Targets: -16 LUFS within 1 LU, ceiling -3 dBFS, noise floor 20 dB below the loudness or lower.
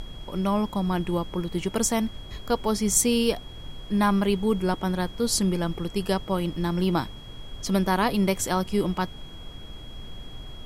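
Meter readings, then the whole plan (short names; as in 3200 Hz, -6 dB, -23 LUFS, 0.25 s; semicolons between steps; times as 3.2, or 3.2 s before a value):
steady tone 3300 Hz; tone level -46 dBFS; noise floor -42 dBFS; noise floor target -46 dBFS; loudness -25.5 LUFS; peak -8.0 dBFS; loudness target -16.0 LUFS
-> notch 3300 Hz, Q 30; noise print and reduce 6 dB; gain +9.5 dB; limiter -3 dBFS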